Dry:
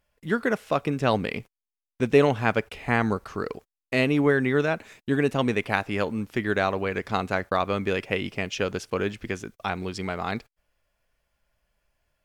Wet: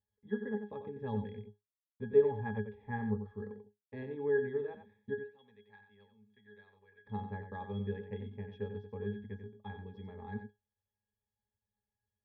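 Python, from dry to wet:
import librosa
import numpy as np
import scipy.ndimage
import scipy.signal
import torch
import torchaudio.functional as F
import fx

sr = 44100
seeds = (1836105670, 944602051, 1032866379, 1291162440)

y = fx.pre_emphasis(x, sr, coefficient=0.97, at=(5.13, 7.05), fade=0.02)
y = fx.cheby_harmonics(y, sr, harmonics=(3,), levels_db=(-20,), full_scale_db=-6.5)
y = fx.air_absorb(y, sr, metres=210.0)
y = fx.octave_resonator(y, sr, note='G#', decay_s=0.17)
y = y + 10.0 ** (-8.5 / 20.0) * np.pad(y, (int(91 * sr / 1000.0), 0))[:len(y)]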